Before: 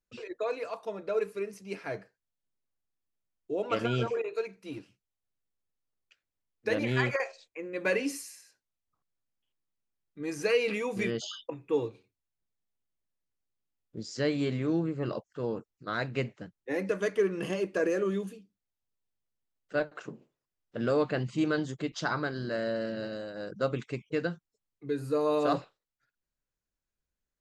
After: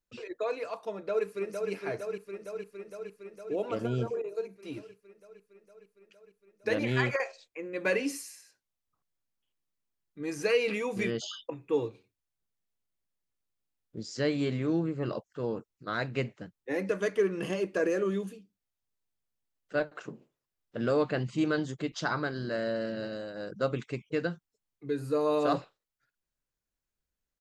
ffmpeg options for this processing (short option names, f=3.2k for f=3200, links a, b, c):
-filter_complex "[0:a]asplit=2[a][b];[b]afade=t=in:st=0.95:d=0.01,afade=t=out:st=1.71:d=0.01,aecho=0:1:460|920|1380|1840|2300|2760|3220|3680|4140|4600|5060|5520:0.595662|0.446747|0.33506|0.251295|0.188471|0.141353|0.106015|0.0795113|0.0596335|0.0447251|0.0335438|0.0251579[c];[a][c]amix=inputs=2:normalize=0,asettb=1/sr,asplit=3[d][e][f];[d]atrim=end=3.714[g];[e]atrim=start=3.71:end=4.56,asetpts=PTS-STARTPTS,afade=t=in:d=0.004:c=qsin,afade=t=out:st=0.846:d=0.004:c=qsin,equalizer=f=2.4k:t=o:w=2.5:g=-12.5[h];[f]atrim=start=4.556[i];[g][h]acrossfade=d=0.004:c1=hsin:c2=qsin[j];[j][i]acrossfade=d=0.004:c1=qsin:c2=hsin"